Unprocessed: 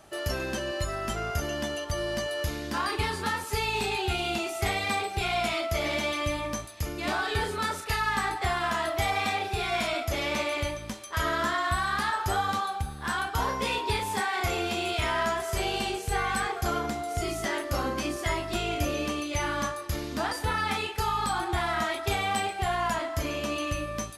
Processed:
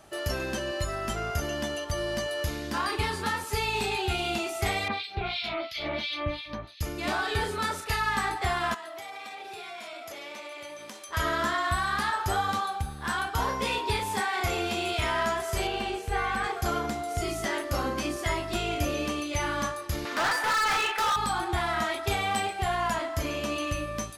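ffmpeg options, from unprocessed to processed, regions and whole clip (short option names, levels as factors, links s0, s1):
-filter_complex "[0:a]asettb=1/sr,asplit=3[s0][s1][s2];[s0]atrim=end=4.884[s3];[s1]atrim=start=4.88:end=6.81,asetpts=PTS-STARTPTS,afade=t=in:d=0.004:c=qsin,afade=t=out:st=1.926:d=0.004:c=qsin,highshelf=f=5700:t=q:w=3:g=-12,acrossover=split=2100[s4][s5];[s4]aeval=exprs='val(0)*(1-1/2+1/2*cos(2*PI*2.9*n/s))':c=same[s6];[s5]aeval=exprs='val(0)*(1-1/2-1/2*cos(2*PI*2.9*n/s))':c=same[s7];[s6][s7]amix=inputs=2:normalize=0[s8];[s2]atrim=start=6.806[s9];[s3][s8]acrossfade=d=0.004:c1=hsin:c2=qsin[s10];[s10][s9]acrossfade=d=0.004:c1=qsin:c2=hsin,asettb=1/sr,asplit=3[s11][s12][s13];[s11]atrim=end=8.744[s14];[s12]atrim=start=8.74:end=11.09,asetpts=PTS-STARTPTS,afade=t=in:d=0.004:c=qsin,afade=t=out:st=2.346:d=0.004:c=qsin,highpass=340,acompressor=threshold=0.0141:ratio=10:attack=3.2:release=140:knee=1:detection=peak[s15];[s13]atrim=start=11.086[s16];[s14][s15]acrossfade=d=0.004:c1=hsin:c2=qsin[s17];[s17][s16]acrossfade=d=0.004:c1=qsin:c2=hsin,asettb=1/sr,asplit=3[s18][s19][s20];[s18]atrim=end=15.674[s21];[s19]atrim=start=15.67:end=16.44,asetpts=PTS-STARTPTS,afade=t=in:d=0.004:c=qsin,afade=t=out:st=0.766:d=0.004:c=qsin,equalizer=f=140:w=2.4:g=-9,acrossover=split=3300[s22][s23];[s23]acompressor=threshold=0.00447:ratio=4:attack=1:release=60[s24];[s22][s24]amix=inputs=2:normalize=0[s25];[s20]atrim=start=16.436[s26];[s21][s25]acrossfade=d=0.004:c1=hsin:c2=qsin[s27];[s27][s26]acrossfade=d=0.004:c1=qsin:c2=hsin,asettb=1/sr,asplit=3[s28][s29][s30];[s28]atrim=end=20.054[s31];[s29]atrim=start=20.05:end=21.16,asetpts=PTS-STARTPTS,afade=t=in:d=0.004:c=qsin,afade=t=out:st=1.106:d=0.004:c=qsin,highpass=360,equalizer=f=1500:w=0.64:g=13.5,volume=15,asoftclip=hard,volume=0.0668[s32];[s30]atrim=start=21.156[s33];[s31][s32]acrossfade=d=0.004:c1=hsin:c2=qsin[s34];[s34][s33]acrossfade=d=0.004:c1=qsin:c2=hsin"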